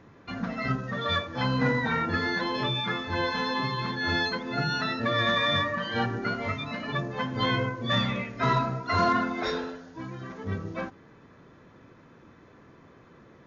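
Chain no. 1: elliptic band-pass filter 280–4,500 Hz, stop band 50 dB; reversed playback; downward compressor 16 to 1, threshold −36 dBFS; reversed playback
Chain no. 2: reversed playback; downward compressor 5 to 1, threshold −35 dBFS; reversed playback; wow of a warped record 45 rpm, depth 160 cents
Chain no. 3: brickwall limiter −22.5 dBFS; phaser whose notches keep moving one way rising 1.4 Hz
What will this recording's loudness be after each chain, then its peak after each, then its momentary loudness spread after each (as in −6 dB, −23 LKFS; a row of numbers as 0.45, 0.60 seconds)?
−39.5, −37.5, −33.5 LKFS; −26.5, −25.0, −21.0 dBFS; 18, 18, 5 LU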